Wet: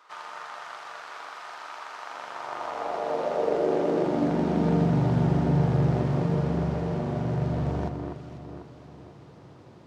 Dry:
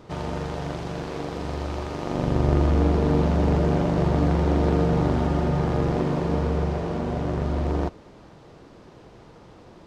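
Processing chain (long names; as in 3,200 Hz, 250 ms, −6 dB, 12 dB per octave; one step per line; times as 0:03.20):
high-pass filter sweep 1,200 Hz → 120 Hz, 0:02.31–0:05.12
delay that swaps between a low-pass and a high-pass 247 ms, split 2,200 Hz, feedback 66%, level −5 dB
level −5.5 dB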